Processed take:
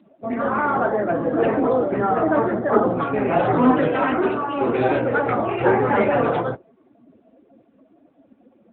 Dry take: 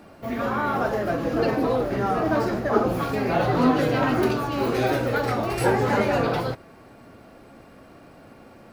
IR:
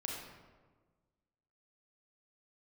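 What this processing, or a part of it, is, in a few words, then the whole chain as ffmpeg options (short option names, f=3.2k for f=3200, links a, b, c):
mobile call with aggressive noise cancelling: -filter_complex "[0:a]asettb=1/sr,asplit=3[a][b][c];[a]atrim=end=3.884[d];[b]atrim=start=3.88:end=4.61,asetpts=PTS-STARTPTS,afade=t=in:d=0.004:c=qsin,afade=t=out:st=0.726:d=0.004:c=qsin,highpass=f=280:p=1[e];[c]atrim=start=4.606[f];[d][e]acrossfade=d=0.004:c1=hsin:c2=qsin[g];[g][f]acrossfade=d=0.004:c1=qsin:c2=hsin,highpass=f=170:p=1,afftdn=nr=21:nf=-37,volume=5dB" -ar 8000 -c:a libopencore_amrnb -b:a 10200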